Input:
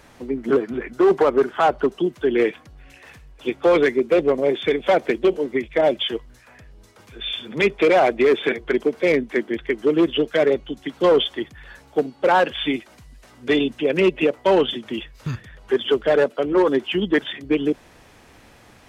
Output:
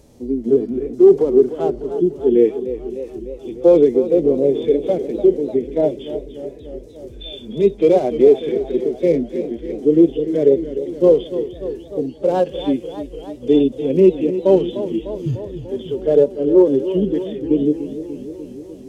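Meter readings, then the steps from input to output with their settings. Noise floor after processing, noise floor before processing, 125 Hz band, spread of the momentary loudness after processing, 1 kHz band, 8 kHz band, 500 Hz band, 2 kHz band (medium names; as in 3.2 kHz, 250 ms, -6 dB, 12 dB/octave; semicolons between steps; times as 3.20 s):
-38 dBFS, -50 dBFS, +5.5 dB, 17 LU, -8.0 dB, no reading, +4.0 dB, under -15 dB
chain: FFT filter 480 Hz 0 dB, 1.5 kHz -22 dB, 6.2 kHz -3 dB; harmonic-percussive split percussive -15 dB; modulated delay 297 ms, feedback 70%, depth 114 cents, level -12 dB; trim +7 dB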